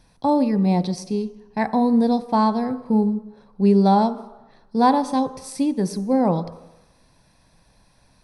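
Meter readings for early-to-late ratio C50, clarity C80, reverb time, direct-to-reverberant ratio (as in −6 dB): 14.5 dB, 16.0 dB, 1.0 s, 10.5 dB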